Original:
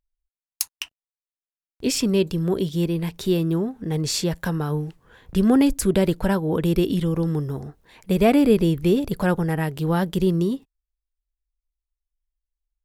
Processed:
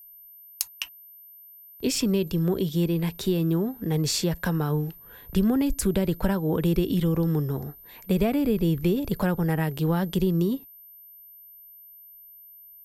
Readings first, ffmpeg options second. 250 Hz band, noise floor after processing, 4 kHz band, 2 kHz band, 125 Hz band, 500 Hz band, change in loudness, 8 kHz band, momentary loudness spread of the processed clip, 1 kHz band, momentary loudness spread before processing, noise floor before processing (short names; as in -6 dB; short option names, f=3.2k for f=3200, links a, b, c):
-3.5 dB, -49 dBFS, -2.5 dB, -4.0 dB, -1.5 dB, -5.0 dB, -3.5 dB, -2.5 dB, 9 LU, -5.0 dB, 11 LU, under -85 dBFS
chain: -filter_complex "[0:a]acrossover=split=160[a][b];[b]acompressor=threshold=-22dB:ratio=10[c];[a][c]amix=inputs=2:normalize=0,aeval=exprs='val(0)+0.00501*sin(2*PI*13000*n/s)':c=same"